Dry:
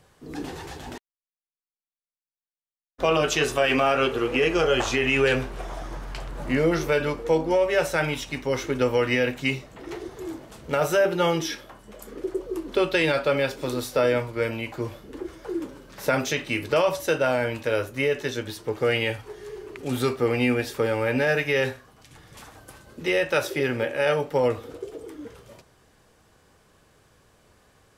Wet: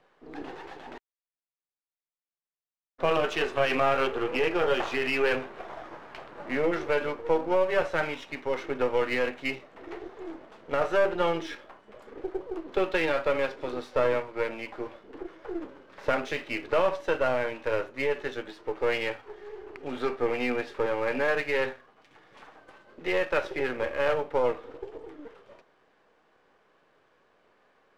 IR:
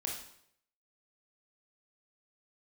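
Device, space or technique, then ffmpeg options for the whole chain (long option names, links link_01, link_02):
crystal radio: -af "highpass=330,lowpass=2500,aeval=exprs='if(lt(val(0),0),0.447*val(0),val(0))':channel_layout=same"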